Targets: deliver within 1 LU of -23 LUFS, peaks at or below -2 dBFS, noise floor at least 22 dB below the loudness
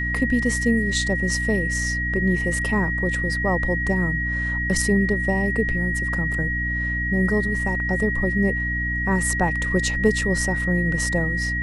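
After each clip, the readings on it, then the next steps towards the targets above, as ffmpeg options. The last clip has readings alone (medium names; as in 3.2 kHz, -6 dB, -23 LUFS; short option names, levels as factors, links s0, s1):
hum 60 Hz; highest harmonic 300 Hz; hum level -25 dBFS; steady tone 1.9 kHz; tone level -24 dBFS; loudness -22.0 LUFS; peak level -5.0 dBFS; loudness target -23.0 LUFS
-> -af "bandreject=f=60:t=h:w=4,bandreject=f=120:t=h:w=4,bandreject=f=180:t=h:w=4,bandreject=f=240:t=h:w=4,bandreject=f=300:t=h:w=4"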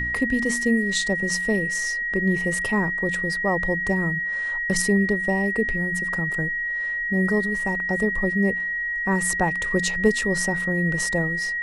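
hum not found; steady tone 1.9 kHz; tone level -24 dBFS
-> -af "bandreject=f=1900:w=30"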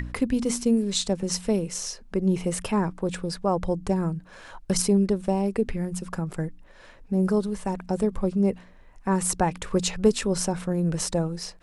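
steady tone not found; loudness -26.0 LUFS; peak level -6.5 dBFS; loudness target -23.0 LUFS
-> -af "volume=1.41"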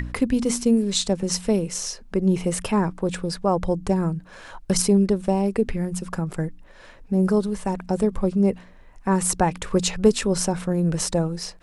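loudness -23.0 LUFS; peak level -3.5 dBFS; noise floor -47 dBFS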